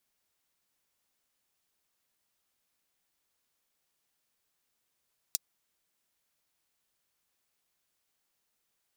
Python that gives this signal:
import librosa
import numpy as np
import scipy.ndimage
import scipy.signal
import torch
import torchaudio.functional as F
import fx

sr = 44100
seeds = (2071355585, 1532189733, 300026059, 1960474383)

y = fx.drum_hat(sr, length_s=0.24, from_hz=5000.0, decay_s=0.03)